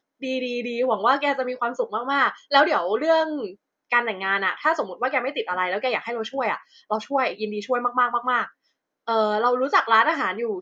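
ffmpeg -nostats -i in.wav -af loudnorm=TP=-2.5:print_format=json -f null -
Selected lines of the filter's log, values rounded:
"input_i" : "-22.7",
"input_tp" : "-2.8",
"input_lra" : "3.2",
"input_thresh" : "-33.0",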